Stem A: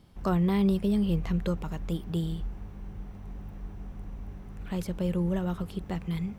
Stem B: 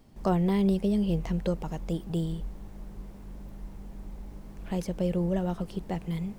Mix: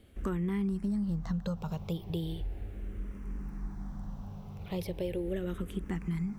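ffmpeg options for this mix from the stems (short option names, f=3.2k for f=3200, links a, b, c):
-filter_complex "[0:a]asplit=2[a][b];[b]afreqshift=-0.37[c];[a][c]amix=inputs=2:normalize=1,volume=2.5dB[d];[1:a]volume=-12dB[e];[d][e]amix=inputs=2:normalize=0,acompressor=threshold=-30dB:ratio=5"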